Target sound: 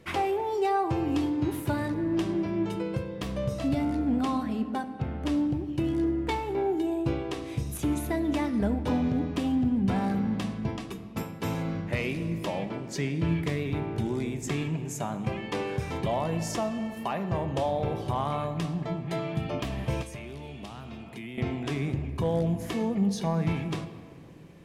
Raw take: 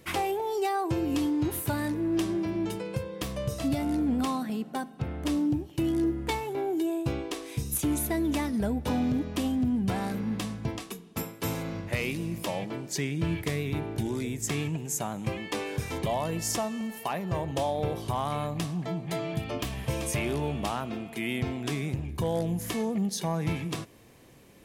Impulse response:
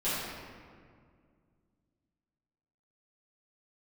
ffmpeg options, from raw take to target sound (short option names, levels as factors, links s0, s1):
-filter_complex "[0:a]aemphasis=mode=reproduction:type=50kf,asplit=2[s0][s1];[1:a]atrim=start_sample=2205[s2];[s1][s2]afir=irnorm=-1:irlink=0,volume=0.133[s3];[s0][s3]amix=inputs=2:normalize=0,asettb=1/sr,asplit=3[s4][s5][s6];[s4]atrim=end=20.024[s7];[s5]atrim=start=20.02:end=21.38,asetpts=PTS-STARTPTS,afade=t=in:d=0.004:c=qsin,afade=t=out:st=1.356:d=0.004:c=qsin,acrossover=split=190|2400[s8][s9][s10];[s8]acompressor=threshold=0.00708:ratio=4[s11];[s9]acompressor=threshold=0.00562:ratio=4[s12];[s10]acompressor=threshold=0.00355:ratio=4[s13];[s11][s12][s13]amix=inputs=3:normalize=0[s14];[s6]atrim=start=21.376[s15];[s7][s14]acrossfade=d=0.004:c1=hsin:c2=qsin[s16];[s16][s15]acrossfade=d=0.004:c1=qsin:c2=hsin"